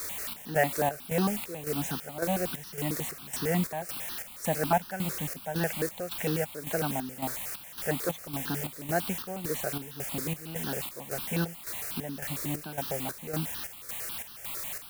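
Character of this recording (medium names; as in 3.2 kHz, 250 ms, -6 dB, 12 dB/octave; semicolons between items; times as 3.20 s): a quantiser's noise floor 6-bit, dither triangular; chopped level 1.8 Hz, depth 65%, duty 60%; notches that jump at a steady rate 11 Hz 800–2200 Hz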